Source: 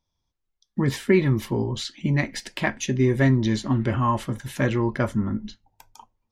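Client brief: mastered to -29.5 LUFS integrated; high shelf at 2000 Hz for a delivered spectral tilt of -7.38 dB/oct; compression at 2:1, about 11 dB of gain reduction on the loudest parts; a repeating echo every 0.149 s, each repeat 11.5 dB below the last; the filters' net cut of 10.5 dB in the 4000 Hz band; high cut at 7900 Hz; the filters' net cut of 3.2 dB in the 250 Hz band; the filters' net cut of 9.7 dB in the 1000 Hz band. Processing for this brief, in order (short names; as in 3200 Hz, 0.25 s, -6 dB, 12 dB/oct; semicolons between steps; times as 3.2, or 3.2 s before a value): LPF 7900 Hz; bell 250 Hz -3.5 dB; bell 1000 Hz -9 dB; high shelf 2000 Hz -8 dB; bell 4000 Hz -4.5 dB; compressor 2:1, threshold -37 dBFS; feedback echo 0.149 s, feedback 27%, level -11.5 dB; gain +6 dB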